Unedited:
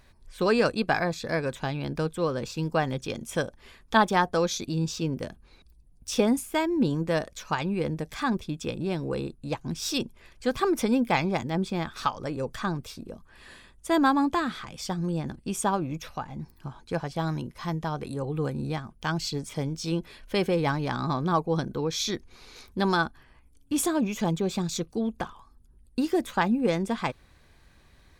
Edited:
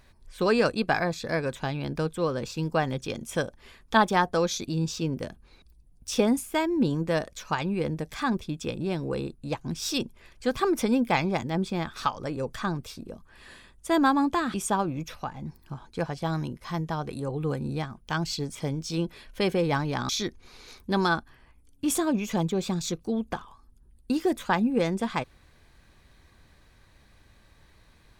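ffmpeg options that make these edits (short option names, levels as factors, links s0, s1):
-filter_complex "[0:a]asplit=3[s0][s1][s2];[s0]atrim=end=14.542[s3];[s1]atrim=start=15.478:end=21.032[s4];[s2]atrim=start=21.968[s5];[s3][s4]acrossfade=d=0.004:c1=hsin:c2=hsin[s6];[s6][s5]acrossfade=d=0.004:c1=hsin:c2=hsin"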